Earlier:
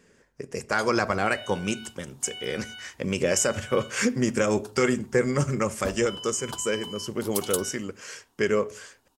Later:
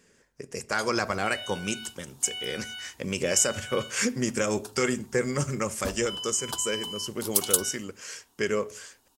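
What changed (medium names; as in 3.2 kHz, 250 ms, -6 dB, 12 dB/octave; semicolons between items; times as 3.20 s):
speech -4.0 dB; master: add treble shelf 3.1 kHz +7.5 dB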